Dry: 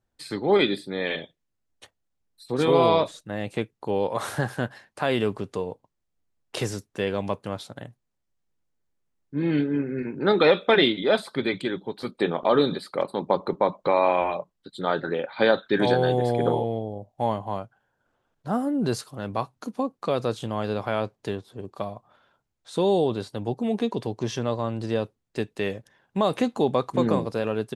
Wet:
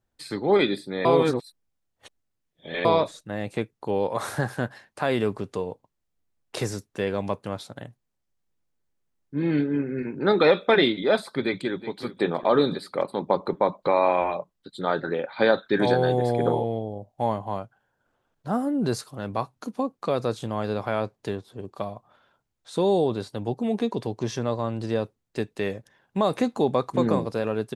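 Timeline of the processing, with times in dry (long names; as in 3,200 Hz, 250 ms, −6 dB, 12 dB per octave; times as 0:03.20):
0:01.05–0:02.85: reverse
0:11.42–0:12.00: delay throw 370 ms, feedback 50%, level −14.5 dB
whole clip: dynamic equaliser 3,000 Hz, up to −7 dB, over −51 dBFS, Q 4.5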